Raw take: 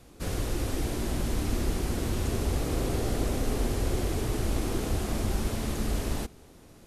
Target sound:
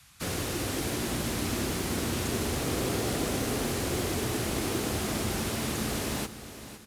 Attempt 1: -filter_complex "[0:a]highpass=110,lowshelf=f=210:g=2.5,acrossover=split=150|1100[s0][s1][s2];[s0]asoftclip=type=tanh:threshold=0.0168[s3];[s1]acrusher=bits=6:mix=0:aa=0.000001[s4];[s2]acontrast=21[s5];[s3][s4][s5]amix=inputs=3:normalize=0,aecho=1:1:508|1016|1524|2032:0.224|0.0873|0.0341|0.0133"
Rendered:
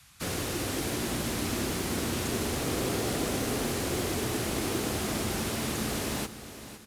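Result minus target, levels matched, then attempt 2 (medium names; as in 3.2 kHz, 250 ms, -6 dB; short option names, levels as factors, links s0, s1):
saturation: distortion +9 dB
-filter_complex "[0:a]highpass=110,lowshelf=f=210:g=2.5,acrossover=split=150|1100[s0][s1][s2];[s0]asoftclip=type=tanh:threshold=0.0376[s3];[s1]acrusher=bits=6:mix=0:aa=0.000001[s4];[s2]acontrast=21[s5];[s3][s4][s5]amix=inputs=3:normalize=0,aecho=1:1:508|1016|1524|2032:0.224|0.0873|0.0341|0.0133"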